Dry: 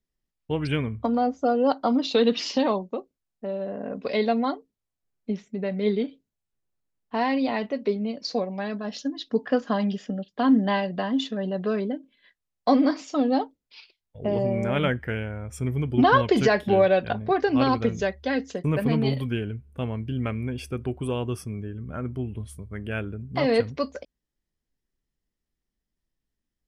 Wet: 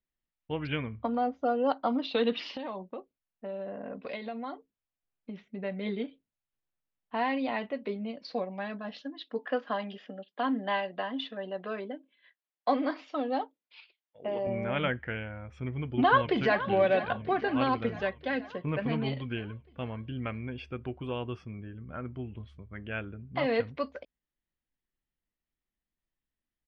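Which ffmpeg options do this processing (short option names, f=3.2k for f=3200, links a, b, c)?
-filter_complex "[0:a]asettb=1/sr,asplit=3[a][b][c];[a]atrim=end=2.524[d];[b]atrim=start=2.52:end=5.48,asetpts=PTS-STARTPTS,afade=t=in:d=0.004:c=qsin,afade=t=out:st=2.956:d=0.004:c=qsin,acompressor=threshold=-27dB:ratio=6:attack=3.2:release=140:knee=1:detection=peak[e];[c]atrim=start=5.476[f];[d][e]acrossfade=d=0.004:c1=hsin:c2=qsin[g];[g][f]acrossfade=d=0.004:c1=qsin:c2=hsin,asettb=1/sr,asplit=3[h][i][j];[h]atrim=end=9.024[k];[i]atrim=start=9.02:end=14.47,asetpts=PTS-STARTPTS,afade=t=in:d=0.004:c=qsin,afade=t=out:st=5.446:d=0.004:c=qsin,highpass=300[l];[j]atrim=start=14.466[m];[k][l]acrossfade=d=0.004:c1=hsin:c2=qsin[n];[n][m]acrossfade=d=0.004:c1=qsin:c2=hsin,asplit=2[o][p];[p]afade=t=in:st=15.75:d=0.01,afade=t=out:st=16.64:d=0.01,aecho=0:1:480|960|1440|1920|2400|2880|3360|3840:0.223872|0.145517|0.094586|0.0614809|0.0399626|0.0259757|0.0168842|0.0109747[q];[o][q]amix=inputs=2:normalize=0,lowpass=f=3.5k:w=0.5412,lowpass=f=3.5k:w=1.3066,lowshelf=f=490:g=-6.5,bandreject=f=420:w=12,volume=-2.5dB"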